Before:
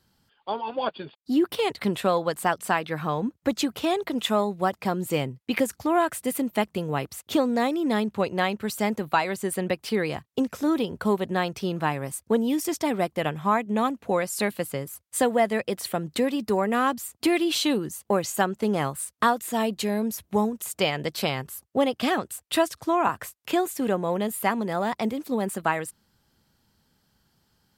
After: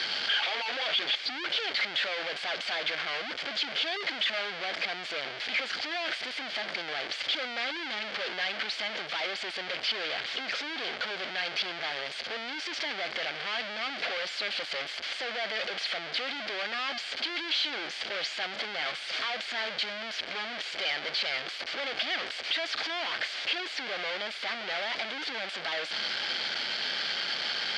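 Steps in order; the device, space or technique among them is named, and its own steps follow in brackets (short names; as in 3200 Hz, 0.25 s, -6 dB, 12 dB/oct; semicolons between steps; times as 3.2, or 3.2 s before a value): 18.85–19.35 HPF 220 Hz -> 540 Hz 6 dB/oct; home computer beeper (infinite clipping; speaker cabinet 570–4600 Hz, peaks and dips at 630 Hz +3 dB, 990 Hz -7 dB, 1600 Hz +6 dB, 2200 Hz +8 dB, 3200 Hz +9 dB, 4600 Hz +9 dB); gain -6.5 dB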